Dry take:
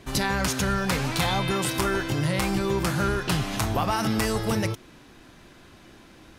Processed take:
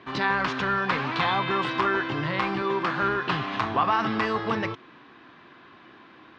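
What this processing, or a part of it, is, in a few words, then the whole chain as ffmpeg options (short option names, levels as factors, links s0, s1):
kitchen radio: -filter_complex "[0:a]highpass=180,equalizer=f=190:t=q:w=4:g=-4,equalizer=f=560:t=q:w=4:g=-4,equalizer=f=1100:t=q:w=4:g=9,equalizer=f=1700:t=q:w=4:g=4,lowpass=f=3700:w=0.5412,lowpass=f=3700:w=1.3066,asettb=1/sr,asplit=3[s0][s1][s2];[s0]atrim=end=2.624[s3];[s1]atrim=start=2.62:end=3.03,asetpts=PTS-STARTPTS,afade=t=in:d=0.004:c=qsin,afade=t=out:st=0.406:d=0.004:c=qsin,highpass=180[s4];[s2]atrim=start=3.026[s5];[s3][s4]acrossfade=d=0.004:c1=hsin:c2=qsin[s6];[s6][s5]acrossfade=d=0.004:c1=qsin:c2=hsin"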